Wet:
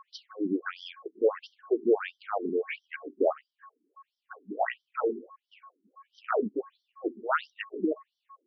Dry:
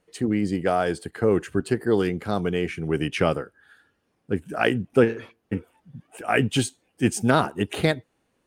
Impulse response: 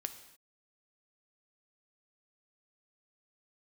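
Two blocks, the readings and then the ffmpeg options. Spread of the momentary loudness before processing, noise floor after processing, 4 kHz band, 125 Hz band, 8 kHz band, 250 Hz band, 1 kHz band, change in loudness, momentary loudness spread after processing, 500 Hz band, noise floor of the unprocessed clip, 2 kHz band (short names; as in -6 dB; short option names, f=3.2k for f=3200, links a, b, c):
11 LU, under -85 dBFS, -14.0 dB, under -25 dB, under -30 dB, -10.0 dB, -6.0 dB, -7.0 dB, 15 LU, -5.5 dB, -72 dBFS, -9.5 dB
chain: -af "aeval=exprs='val(0)+0.00501*sin(2*PI*1100*n/s)':c=same,afftfilt=real='re*between(b*sr/1024,280*pow(4300/280,0.5+0.5*sin(2*PI*1.5*pts/sr))/1.41,280*pow(4300/280,0.5+0.5*sin(2*PI*1.5*pts/sr))*1.41)':imag='im*between(b*sr/1024,280*pow(4300/280,0.5+0.5*sin(2*PI*1.5*pts/sr))/1.41,280*pow(4300/280,0.5+0.5*sin(2*PI*1.5*pts/sr))*1.41)':win_size=1024:overlap=0.75"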